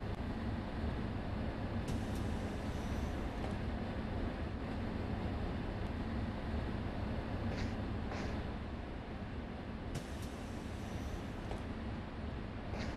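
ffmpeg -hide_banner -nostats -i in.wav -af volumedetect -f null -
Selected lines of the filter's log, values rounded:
mean_volume: -40.0 dB
max_volume: -26.2 dB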